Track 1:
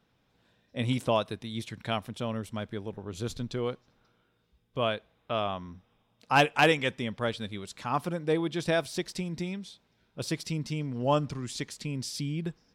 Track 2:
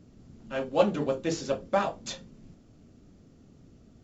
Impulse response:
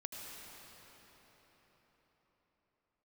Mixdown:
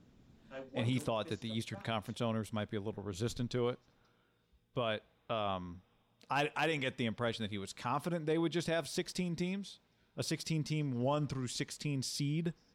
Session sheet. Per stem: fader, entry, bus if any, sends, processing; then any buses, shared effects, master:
-2.5 dB, 0.00 s, no send, dry
-8.5 dB, 0.00 s, no send, auto duck -20 dB, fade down 1.90 s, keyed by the first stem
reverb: off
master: limiter -24.5 dBFS, peak gain reduction 10 dB

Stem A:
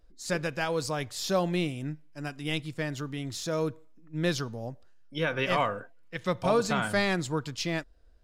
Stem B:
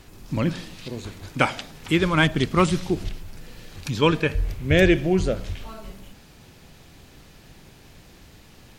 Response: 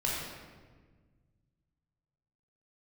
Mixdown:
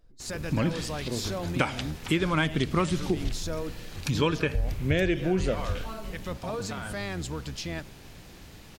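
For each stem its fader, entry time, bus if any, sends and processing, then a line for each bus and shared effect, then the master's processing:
0.0 dB, 0.00 s, no send, octaver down 1 oct, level -2 dB; limiter -25.5 dBFS, peak gain reduction 11 dB
+1.0 dB, 0.20 s, no send, dry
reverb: off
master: compressor 5:1, threshold -22 dBFS, peak gain reduction 10.5 dB

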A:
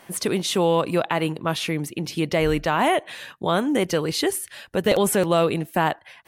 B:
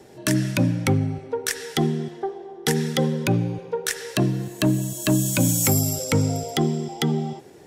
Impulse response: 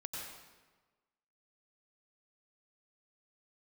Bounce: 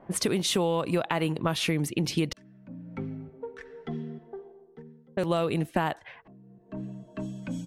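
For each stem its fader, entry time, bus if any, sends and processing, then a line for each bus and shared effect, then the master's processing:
+1.5 dB, 0.00 s, muted 2.33–5.17, no send, compressor 6:1, threshold -25 dBFS, peak gain reduction 10.5 dB
-16.0 dB, 2.10 s, no send, comb 4.5 ms, depth 69%; three-band squash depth 40%; auto duck -23 dB, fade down 0.70 s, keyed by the first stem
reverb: off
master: low-pass opened by the level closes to 660 Hz, open at -25 dBFS; low shelf 130 Hz +6 dB

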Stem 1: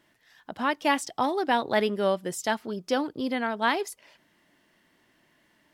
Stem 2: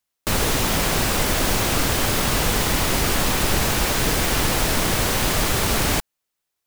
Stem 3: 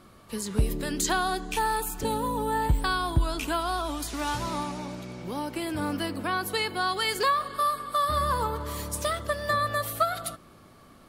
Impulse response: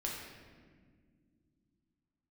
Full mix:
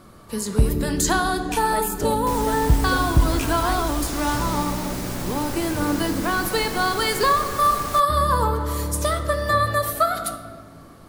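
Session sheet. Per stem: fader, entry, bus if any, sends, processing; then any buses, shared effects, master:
1.45 s -18.5 dB -> 1.77 s -6 dB, 0.00 s, no send, dry
-10.5 dB, 2.00 s, no send, dry
+3.0 dB, 0.00 s, send -4.5 dB, dry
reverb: on, pre-delay 6 ms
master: bell 2800 Hz -5 dB 1.2 oct

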